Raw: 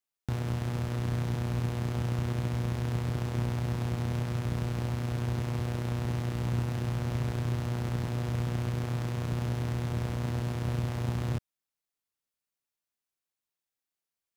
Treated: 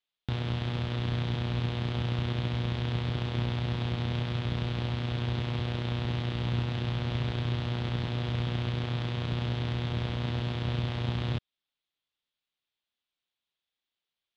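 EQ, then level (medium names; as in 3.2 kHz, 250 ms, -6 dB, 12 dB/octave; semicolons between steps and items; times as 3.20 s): resonant low-pass 3.5 kHz, resonance Q 3.7; 0.0 dB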